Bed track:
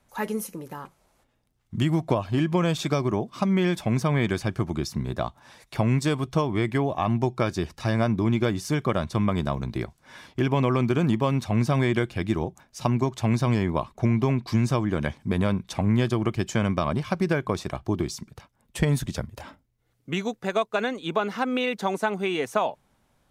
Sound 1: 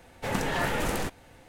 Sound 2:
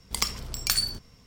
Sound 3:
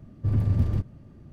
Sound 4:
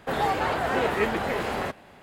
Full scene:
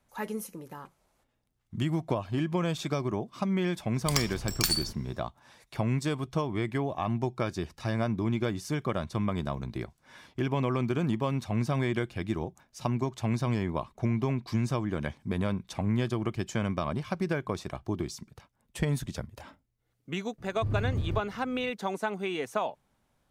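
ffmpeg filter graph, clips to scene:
ffmpeg -i bed.wav -i cue0.wav -i cue1.wav -i cue2.wav -filter_complex "[0:a]volume=-6dB[link_01];[3:a]asoftclip=type=tanh:threshold=-16dB[link_02];[2:a]atrim=end=1.26,asetpts=PTS-STARTPTS,volume=-2.5dB,afade=type=in:duration=0.004:curve=hsin,afade=type=out:start_time=1.256:duration=0.004:curve=hsin,adelay=3940[link_03];[link_02]atrim=end=1.32,asetpts=PTS-STARTPTS,volume=-5.5dB,afade=type=in:duration=0.004:curve=hsin,afade=type=out:start_time=1.316:duration=0.004:curve=hsin,adelay=20380[link_04];[link_01][link_03][link_04]amix=inputs=3:normalize=0" out.wav

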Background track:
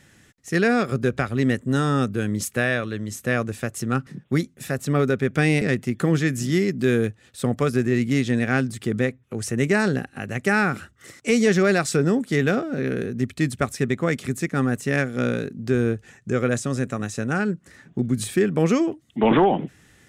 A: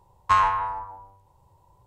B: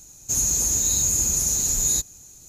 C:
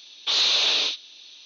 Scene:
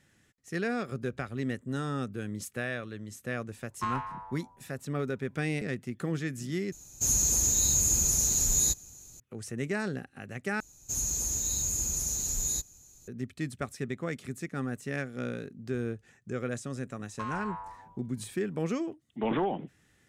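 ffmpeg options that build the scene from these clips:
ffmpeg -i bed.wav -i cue0.wav -i cue1.wav -filter_complex "[1:a]asplit=2[link_01][link_02];[2:a]asplit=2[link_03][link_04];[0:a]volume=-12dB[link_05];[link_03]lowshelf=frequency=160:gain=3[link_06];[link_04]lowshelf=frequency=73:gain=6[link_07];[link_02]acompressor=threshold=-23dB:ratio=6:attack=3.2:release=140:knee=1:detection=peak[link_08];[link_05]asplit=3[link_09][link_10][link_11];[link_09]atrim=end=6.724[link_12];[link_06]atrim=end=2.48,asetpts=PTS-STARTPTS,volume=-4dB[link_13];[link_10]atrim=start=9.196:end=10.604[link_14];[link_07]atrim=end=2.48,asetpts=PTS-STARTPTS,volume=-9.5dB[link_15];[link_11]atrim=start=13.076[link_16];[link_01]atrim=end=1.86,asetpts=PTS-STARTPTS,volume=-14dB,afade=type=in:duration=0.004:curve=hsin,afade=type=out:start_time=1.856:duration=0.004:curve=hsin,adelay=3520[link_17];[link_08]atrim=end=1.86,asetpts=PTS-STARTPTS,volume=-11dB,afade=type=in:duration=0.004:curve=hsin,afade=type=out:start_time=1.856:duration=0.004:curve=hsin,adelay=16900[link_18];[link_12][link_13]acrossfade=duration=0.004:curve1=hsin:curve2=hsin[link_19];[link_19][link_14]acrossfade=duration=0.004:curve1=hsin:curve2=hsin[link_20];[link_20][link_15]acrossfade=duration=0.004:curve1=hsin:curve2=hsin[link_21];[link_21][link_16]acrossfade=duration=0.004:curve1=hsin:curve2=hsin[link_22];[link_22][link_17][link_18]amix=inputs=3:normalize=0" out.wav

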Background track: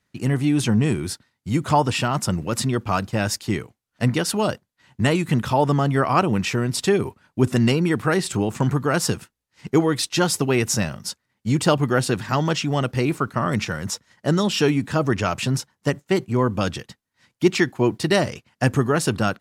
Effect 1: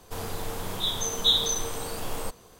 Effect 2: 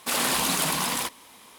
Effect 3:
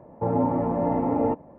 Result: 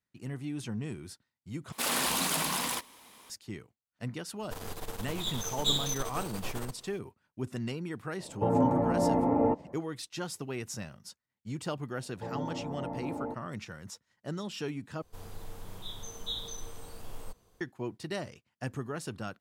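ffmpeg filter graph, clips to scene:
ffmpeg -i bed.wav -i cue0.wav -i cue1.wav -i cue2.wav -filter_complex "[1:a]asplit=2[link_01][link_02];[3:a]asplit=2[link_03][link_04];[0:a]volume=-17.5dB[link_05];[link_01]aeval=exprs='if(lt(val(0),0),0.251*val(0),val(0))':channel_layout=same[link_06];[link_02]lowshelf=frequency=140:gain=9[link_07];[link_05]asplit=3[link_08][link_09][link_10];[link_08]atrim=end=1.724[link_11];[2:a]atrim=end=1.58,asetpts=PTS-STARTPTS,volume=-5dB[link_12];[link_09]atrim=start=3.296:end=15.024[link_13];[link_07]atrim=end=2.59,asetpts=PTS-STARTPTS,volume=-15.5dB[link_14];[link_10]atrim=start=17.606[link_15];[link_06]atrim=end=2.59,asetpts=PTS-STARTPTS,volume=-3.5dB,afade=type=in:duration=0.004:curve=hsin,afade=type=out:start_time=2.586:duration=0.004:curve=hsin,adelay=4400[link_16];[link_03]atrim=end=1.58,asetpts=PTS-STARTPTS,volume=-2.5dB,afade=type=in:duration=0.004:curve=hsin,afade=type=out:start_time=1.576:duration=0.004:curve=hsin,adelay=8200[link_17];[link_04]atrim=end=1.58,asetpts=PTS-STARTPTS,volume=-14dB,afade=type=in:duration=0.004:curve=hsin,afade=type=out:start_time=1.576:duration=0.004:curve=hsin,adelay=12000[link_18];[link_11][link_12]acrossfade=duration=0.004:curve1=hsin:curve2=hsin[link_19];[link_19][link_13]acrossfade=duration=0.004:curve1=hsin:curve2=hsin[link_20];[link_20][link_14]acrossfade=duration=0.004:curve1=hsin:curve2=hsin[link_21];[link_21][link_15]acrossfade=duration=0.004:curve1=hsin:curve2=hsin[link_22];[link_22][link_16][link_17][link_18]amix=inputs=4:normalize=0" out.wav

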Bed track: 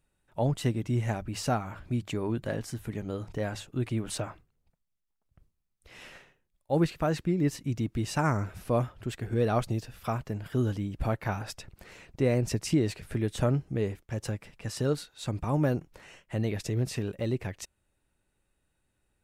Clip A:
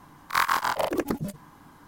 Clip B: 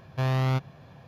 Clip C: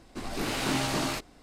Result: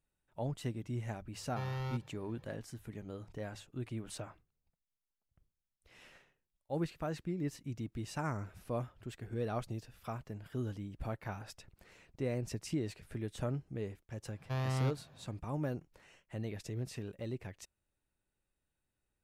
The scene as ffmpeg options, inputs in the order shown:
ffmpeg -i bed.wav -i cue0.wav -i cue1.wav -filter_complex "[2:a]asplit=2[link_01][link_02];[0:a]volume=-10.5dB[link_03];[link_01]aecho=1:1:2.2:0.92,atrim=end=1.07,asetpts=PTS-STARTPTS,volume=-15dB,afade=type=in:duration=0.004:curve=hsin,afade=type=out:start_time=1.066:duration=0.004:curve=hsin,adelay=1380[link_04];[link_02]atrim=end=1.07,asetpts=PTS-STARTPTS,volume=-9.5dB,afade=type=in:duration=0.1,afade=type=out:start_time=0.97:duration=0.1,adelay=14320[link_05];[link_03][link_04][link_05]amix=inputs=3:normalize=0" out.wav

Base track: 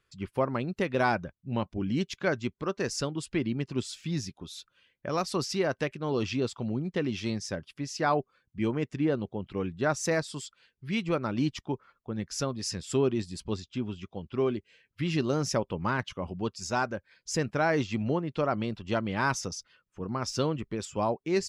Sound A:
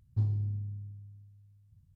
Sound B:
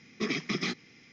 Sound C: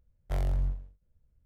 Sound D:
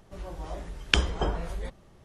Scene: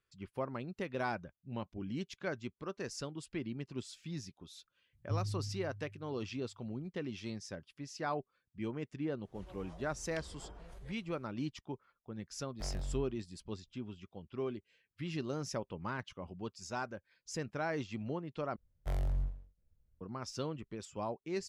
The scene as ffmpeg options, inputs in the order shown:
ffmpeg -i bed.wav -i cue0.wav -i cue1.wav -i cue2.wav -i cue3.wav -filter_complex "[3:a]asplit=2[link_01][link_02];[0:a]volume=-10.5dB[link_03];[4:a]acompressor=threshold=-34dB:ratio=6:attack=3.2:release=140:knee=1:detection=peak[link_04];[link_01]equalizer=frequency=72:width_type=o:width=1.1:gain=-8[link_05];[link_03]asplit=2[link_06][link_07];[link_06]atrim=end=18.564[link_08];[link_02]atrim=end=1.45,asetpts=PTS-STARTPTS,volume=-5dB[link_09];[link_07]atrim=start=20.006[link_10];[1:a]atrim=end=1.95,asetpts=PTS-STARTPTS,volume=-7dB,afade=type=in:duration=0.004:curve=hsin,afade=type=out:start_time=1.946:duration=0.004:curve=hsin,adelay=217413S[link_11];[link_04]atrim=end=2.04,asetpts=PTS-STARTPTS,volume=-13dB,afade=type=in:duration=0.004:curve=hsin,afade=type=out:start_time=2.036:duration=0.004:curve=hsin,adelay=9230[link_12];[link_05]atrim=end=1.45,asetpts=PTS-STARTPTS,volume=-8dB,afade=type=in:duration=0.004:curve=hsin,afade=type=out:start_time=1.446:duration=0.004:curve=hsin,adelay=12300[link_13];[link_08][link_09]acrossfade=duration=0.004:curve1=hsin:curve2=hsin[link_14];[link_14][link_10]acrossfade=duration=0.004:curve1=hsin:curve2=hsin[link_15];[link_15][link_11][link_12][link_13]amix=inputs=4:normalize=0" out.wav

